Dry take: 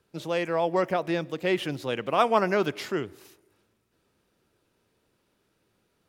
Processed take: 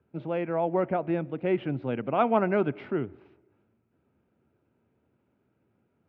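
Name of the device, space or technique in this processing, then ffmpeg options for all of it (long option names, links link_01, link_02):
bass cabinet: -filter_complex "[0:a]highpass=78,equalizer=frequency=79:width_type=q:width=4:gain=8,equalizer=frequency=130:width_type=q:width=4:gain=5,equalizer=frequency=240:width_type=q:width=4:gain=6,equalizer=frequency=490:width_type=q:width=4:gain=-3,equalizer=frequency=1100:width_type=q:width=4:gain=-7,equalizer=frequency=1800:width_type=q:width=4:gain=-9,lowpass=frequency=2100:width=0.5412,lowpass=frequency=2100:width=1.3066,asettb=1/sr,asplit=3[link_01][link_02][link_03];[link_01]atrim=end=2.024[link_04];[link_02]atrim=start=2.02:end=2.61,asetpts=PTS-STARTPTS,afade=type=in:duration=0.004:curve=qsin,afade=type=out:start_time=0.586:duration=0.004:curve=qsin,adynamicequalizer=threshold=0.00562:dfrequency=3800:dqfactor=0.95:tfrequency=3800:tqfactor=0.95:attack=5:release=100:ratio=0.375:range=2.5:mode=boostabove:tftype=bell[link_05];[link_03]atrim=start=2.606[link_06];[link_04][link_05]acrossfade=duration=0.004:curve1=hsin:curve2=qsin[link_07];[link_07][link_06]acrossfade=duration=0.004:curve1=qsin:curve2=hsin"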